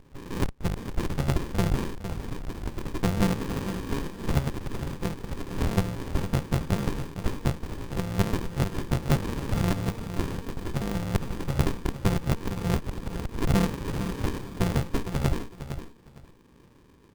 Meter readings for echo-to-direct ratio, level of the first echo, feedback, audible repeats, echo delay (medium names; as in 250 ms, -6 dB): -10.0 dB, -10.0 dB, 19%, 2, 458 ms